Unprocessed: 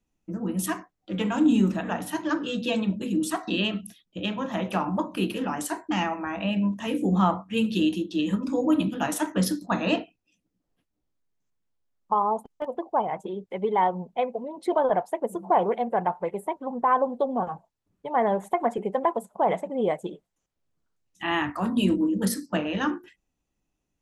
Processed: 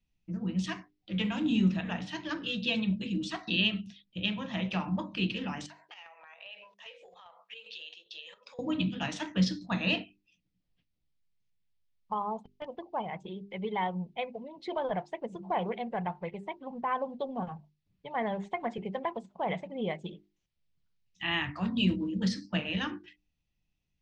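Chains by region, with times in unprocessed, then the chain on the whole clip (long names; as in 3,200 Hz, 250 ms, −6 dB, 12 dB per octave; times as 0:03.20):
0:05.66–0:08.59: elliptic high-pass filter 460 Hz + square-wave tremolo 2.5 Hz, depth 65%, duty 70% + downward compressor 8 to 1, threshold −41 dBFS
whole clip: inverse Chebyshev low-pass filter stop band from 11,000 Hz, stop band 50 dB; flat-topped bell 620 Hz −11.5 dB 3 octaves; mains-hum notches 50/100/150/200/250/300/350/400 Hz; level +1.5 dB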